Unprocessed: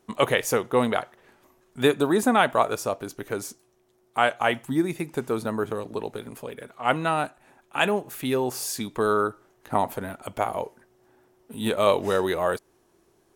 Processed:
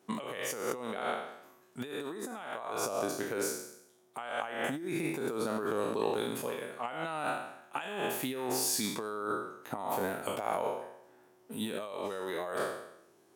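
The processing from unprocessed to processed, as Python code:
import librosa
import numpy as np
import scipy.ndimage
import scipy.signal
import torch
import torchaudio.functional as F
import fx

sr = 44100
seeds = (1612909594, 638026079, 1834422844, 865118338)

y = fx.spec_trails(x, sr, decay_s=0.79)
y = fx.over_compress(y, sr, threshold_db=-28.0, ratio=-1.0)
y = scipy.signal.sosfilt(scipy.signal.butter(2, 160.0, 'highpass', fs=sr, output='sos'), y)
y = fx.sustainer(y, sr, db_per_s=30.0, at=(5.66, 6.46))
y = F.gain(torch.from_numpy(y), -7.5).numpy()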